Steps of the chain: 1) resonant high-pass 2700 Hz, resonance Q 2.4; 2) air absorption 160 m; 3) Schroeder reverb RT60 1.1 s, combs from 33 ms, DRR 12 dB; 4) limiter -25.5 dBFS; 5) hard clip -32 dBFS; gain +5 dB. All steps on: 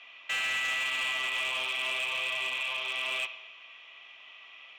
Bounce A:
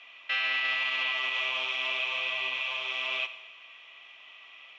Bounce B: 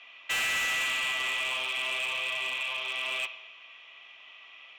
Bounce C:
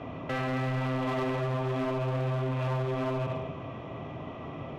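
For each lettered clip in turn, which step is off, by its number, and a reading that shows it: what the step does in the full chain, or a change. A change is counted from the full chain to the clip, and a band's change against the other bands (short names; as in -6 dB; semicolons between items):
5, distortion -14 dB; 4, momentary loudness spread change +2 LU; 1, 500 Hz band +25.5 dB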